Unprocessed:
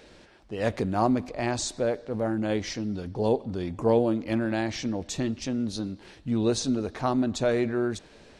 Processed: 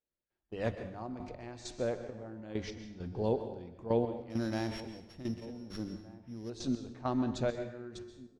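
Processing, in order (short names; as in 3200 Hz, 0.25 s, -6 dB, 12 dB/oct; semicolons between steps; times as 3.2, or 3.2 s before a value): 4.3–6.5 sample sorter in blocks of 8 samples; gate -39 dBFS, range -26 dB; low shelf 130 Hz +6.5 dB; notches 50/100/150/200 Hz; resonator 180 Hz, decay 1.7 s, mix 60%; step gate "..xxx...x" 100 bpm -12 dB; air absorption 68 m; outdoor echo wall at 260 m, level -19 dB; plate-style reverb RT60 0.68 s, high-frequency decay 0.85×, pre-delay 0.115 s, DRR 9.5 dB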